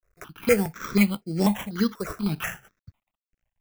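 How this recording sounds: a quantiser's noise floor 12-bit, dither none; tremolo triangle 2.2 Hz, depth 85%; aliases and images of a low sample rate 4500 Hz, jitter 0%; notches that jump at a steady rate 4.1 Hz 870–3700 Hz

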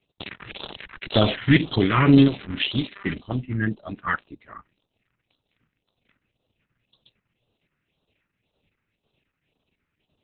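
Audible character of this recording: phasing stages 4, 1.9 Hz, lowest notch 620–2000 Hz; tremolo triangle 2 Hz, depth 55%; Opus

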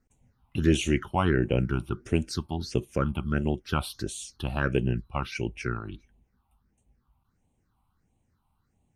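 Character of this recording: phasing stages 6, 1.5 Hz, lowest notch 450–1400 Hz

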